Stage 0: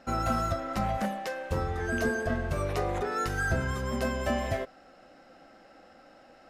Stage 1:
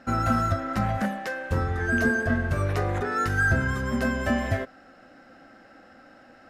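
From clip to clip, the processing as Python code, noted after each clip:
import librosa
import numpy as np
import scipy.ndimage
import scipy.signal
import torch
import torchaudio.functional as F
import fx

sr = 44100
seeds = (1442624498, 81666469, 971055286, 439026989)

y = fx.graphic_eq_15(x, sr, hz=(100, 250, 1600), db=(9, 7, 8))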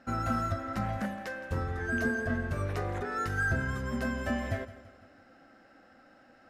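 y = fx.echo_feedback(x, sr, ms=167, feedback_pct=48, wet_db=-16.5)
y = y * 10.0 ** (-7.0 / 20.0)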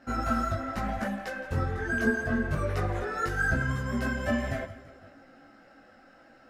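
y = fx.chorus_voices(x, sr, voices=6, hz=0.82, base_ms=18, depth_ms=4.4, mix_pct=50)
y = y * 10.0 ** (6.0 / 20.0)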